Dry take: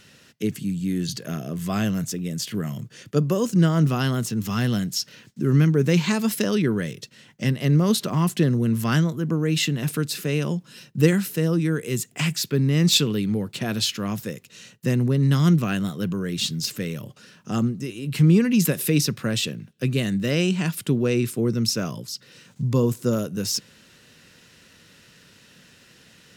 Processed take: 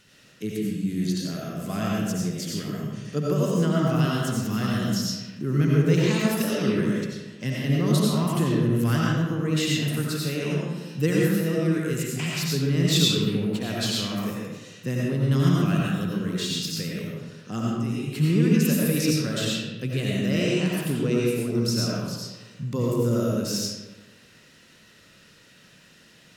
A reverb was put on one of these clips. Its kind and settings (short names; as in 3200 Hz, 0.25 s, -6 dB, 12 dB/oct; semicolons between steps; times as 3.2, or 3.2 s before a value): digital reverb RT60 1.2 s, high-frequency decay 0.65×, pre-delay 50 ms, DRR -4.5 dB; gain -6.5 dB